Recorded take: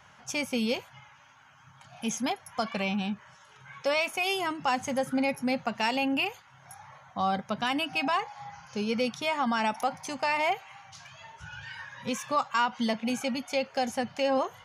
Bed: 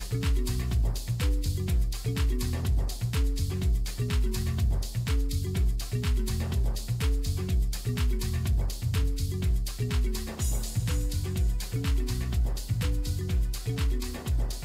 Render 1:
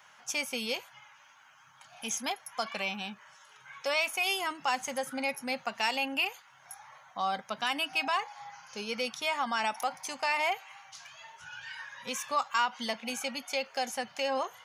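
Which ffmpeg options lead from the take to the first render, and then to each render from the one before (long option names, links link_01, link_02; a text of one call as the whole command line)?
ffmpeg -i in.wav -af "highpass=frequency=850:poles=1,highshelf=frequency=10000:gain=6.5" out.wav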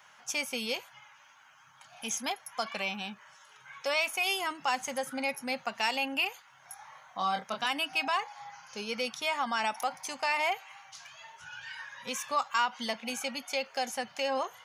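ffmpeg -i in.wav -filter_complex "[0:a]asettb=1/sr,asplit=3[link_01][link_02][link_03];[link_01]atrim=end=6.764[link_04];[link_02]atrim=start=6.76:end=7.66,asetpts=PTS-STARTPTS,afade=type=in:duration=0.004:curve=qsin,afade=type=out:start_time=0.896:duration=0.004:curve=qsin,asplit=2[link_05][link_06];[link_06]adelay=27,volume=-4dB[link_07];[link_05][link_07]amix=inputs=2:normalize=0,atrim=end_sample=39690[link_08];[link_03]atrim=start=7.656[link_09];[link_04][link_08]acrossfade=duration=0.004:curve1=hsin:curve2=qsin[link_10];[link_10][link_09]acrossfade=duration=0.004:curve1=qsin:curve2=hsin" out.wav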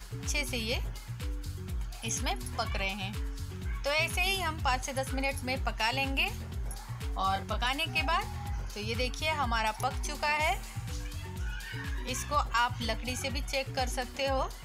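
ffmpeg -i in.wav -i bed.wav -filter_complex "[1:a]volume=-10dB[link_01];[0:a][link_01]amix=inputs=2:normalize=0" out.wav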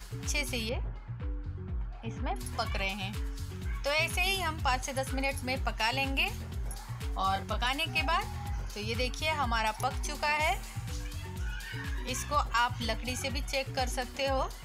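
ffmpeg -i in.wav -filter_complex "[0:a]asettb=1/sr,asplit=3[link_01][link_02][link_03];[link_01]atrim=end=0.694[link_04];[link_02]atrim=start=0.69:end=2.36,asetpts=PTS-STARTPTS,afade=type=in:duration=0.004:curve=qsin,afade=type=out:start_time=1.666:duration=0.004:curve=qsin,lowpass=1500[link_05];[link_03]atrim=start=2.356[link_06];[link_04][link_05]acrossfade=duration=0.004:curve1=hsin:curve2=qsin[link_07];[link_07][link_06]acrossfade=duration=0.004:curve1=qsin:curve2=hsin" out.wav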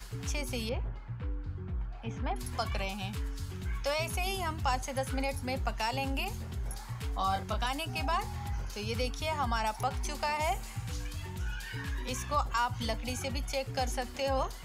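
ffmpeg -i in.wav -filter_complex "[0:a]acrossover=split=240|1400|4000[link_01][link_02][link_03][link_04];[link_03]acompressor=threshold=-43dB:ratio=6[link_05];[link_04]alimiter=level_in=6.5dB:limit=-24dB:level=0:latency=1:release=332,volume=-6.5dB[link_06];[link_01][link_02][link_05][link_06]amix=inputs=4:normalize=0" out.wav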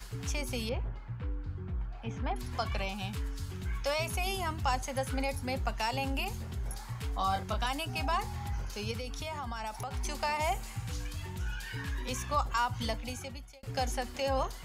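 ffmpeg -i in.wav -filter_complex "[0:a]asettb=1/sr,asplit=3[link_01][link_02][link_03];[link_01]atrim=end=2.414[link_04];[link_02]atrim=start=2.41:end=2.96,asetpts=PTS-STARTPTS,afade=type=in:duration=0.004:curve=qsin,afade=type=out:start_time=0.546:duration=0.004:curve=qsin,acrossover=split=6100[link_05][link_06];[link_06]acompressor=threshold=-56dB:ratio=4:attack=1:release=60[link_07];[link_05][link_07]amix=inputs=2:normalize=0[link_08];[link_03]atrim=start=2.956[link_09];[link_04][link_08]acrossfade=duration=0.004:curve1=hsin:curve2=qsin[link_10];[link_10][link_09]acrossfade=duration=0.004:curve1=qsin:curve2=hsin,asettb=1/sr,asplit=3[link_11][link_12][link_13];[link_11]atrim=end=8.914[link_14];[link_12]atrim=start=8.91:end=9.93,asetpts=PTS-STARTPTS,afade=type=in:duration=0.004:curve=qsin,afade=type=out:start_time=1.016:duration=0.004:curve=qsin,acompressor=threshold=-34dB:ratio=6:attack=3.2:release=140:knee=1:detection=peak[link_15];[link_13]atrim=start=9.926[link_16];[link_14][link_15]acrossfade=duration=0.004:curve1=hsin:curve2=qsin[link_17];[link_17][link_16]acrossfade=duration=0.004:curve1=qsin:curve2=hsin,asplit=2[link_18][link_19];[link_18]atrim=end=13.63,asetpts=PTS-STARTPTS,afade=type=out:start_time=12.86:duration=0.77[link_20];[link_19]atrim=start=13.63,asetpts=PTS-STARTPTS,afade=type=in:duration=0.004:curve=hsin[link_21];[link_20][link_21]concat=n=2:v=0:a=1" out.wav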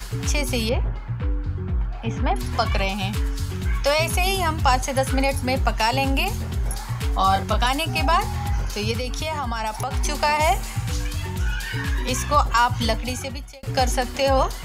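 ffmpeg -i in.wav -af "volume=12dB" out.wav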